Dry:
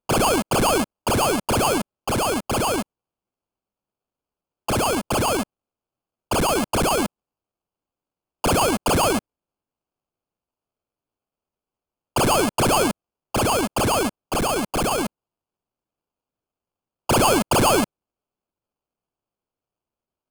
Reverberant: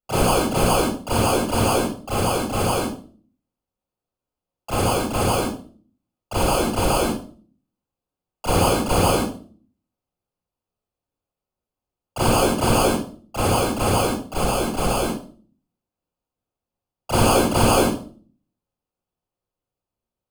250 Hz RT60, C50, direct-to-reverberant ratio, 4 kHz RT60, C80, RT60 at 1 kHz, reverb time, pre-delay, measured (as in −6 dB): 0.60 s, 2.5 dB, −8.5 dB, 0.40 s, 8.5 dB, 0.40 s, 0.45 s, 27 ms